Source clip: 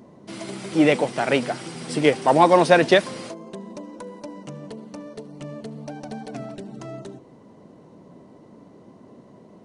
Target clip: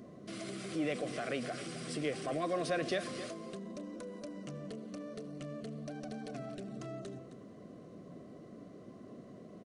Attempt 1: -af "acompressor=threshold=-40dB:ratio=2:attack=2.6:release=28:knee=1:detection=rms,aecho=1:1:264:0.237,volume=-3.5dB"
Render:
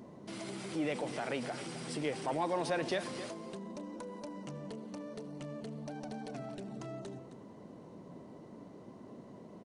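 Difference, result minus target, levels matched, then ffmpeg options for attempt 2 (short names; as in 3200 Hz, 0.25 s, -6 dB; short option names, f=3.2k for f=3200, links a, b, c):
1000 Hz band +3.0 dB
-af "acompressor=threshold=-40dB:ratio=2:attack=2.6:release=28:knee=1:detection=rms,asuperstop=centerf=890:order=8:qfactor=3.6,aecho=1:1:264:0.237,volume=-3.5dB"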